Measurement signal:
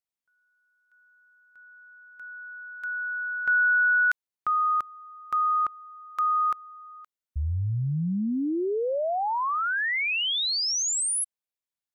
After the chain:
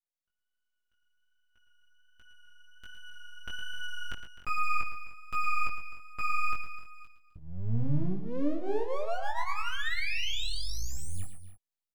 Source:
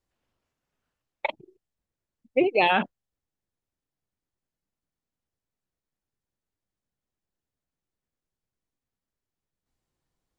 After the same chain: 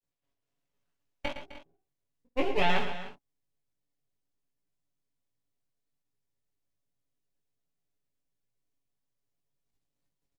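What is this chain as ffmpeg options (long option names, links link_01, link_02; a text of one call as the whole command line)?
ffmpeg -i in.wav -filter_complex "[0:a]aecho=1:1:7.1:0.91,aeval=exprs='max(val(0),0)':channel_layout=same,flanger=delay=17:depth=4.6:speed=1.3,acrossover=split=3800[link_01][link_02];[link_02]acompressor=threshold=-47dB:ratio=4:attack=1:release=60[link_03];[link_01][link_03]amix=inputs=2:normalize=0,bandreject=frequency=840:width=26,aecho=1:1:56|112|127|258|302:0.126|0.299|0.15|0.168|0.141,dynaudnorm=framelen=180:gausssize=5:maxgain=4dB,equalizer=frequency=1400:width_type=o:width=0.84:gain=-4.5,volume=-4.5dB" out.wav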